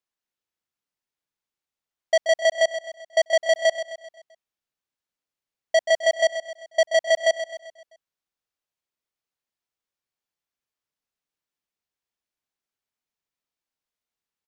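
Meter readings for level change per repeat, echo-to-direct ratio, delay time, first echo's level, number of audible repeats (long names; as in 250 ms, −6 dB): −6.5 dB, −9.5 dB, 130 ms, −10.5 dB, 4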